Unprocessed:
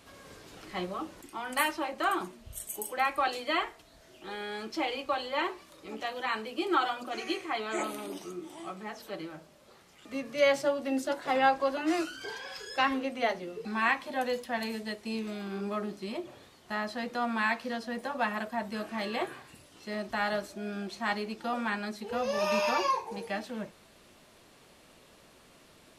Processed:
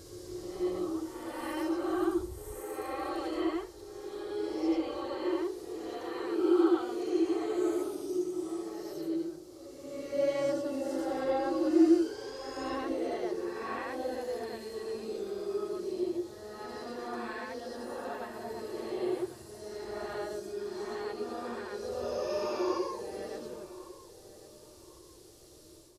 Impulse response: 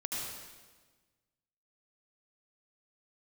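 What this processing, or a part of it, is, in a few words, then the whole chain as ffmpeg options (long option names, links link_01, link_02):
reverse reverb: -filter_complex "[0:a]acrossover=split=2700[link_01][link_02];[link_02]acompressor=threshold=-54dB:ratio=4:attack=1:release=60[link_03];[link_01][link_03]amix=inputs=2:normalize=0,firequalizer=gain_entry='entry(120,0);entry(210,-22);entry(340,5);entry(640,-13);entry(2400,-18);entry(4700,0)':delay=0.05:min_phase=1,asplit=2[link_04][link_05];[link_05]adelay=1101,lowpass=frequency=2000:poles=1,volume=-16dB,asplit=2[link_06][link_07];[link_07]adelay=1101,lowpass=frequency=2000:poles=1,volume=0.36,asplit=2[link_08][link_09];[link_09]adelay=1101,lowpass=frequency=2000:poles=1,volume=0.36[link_10];[link_04][link_06][link_08][link_10]amix=inputs=4:normalize=0,areverse[link_11];[1:a]atrim=start_sample=2205[link_12];[link_11][link_12]afir=irnorm=-1:irlink=0,areverse,volume=2.5dB"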